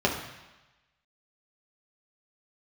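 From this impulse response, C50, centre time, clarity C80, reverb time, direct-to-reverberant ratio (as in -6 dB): 6.0 dB, 31 ms, 8.5 dB, 1.1 s, -2.0 dB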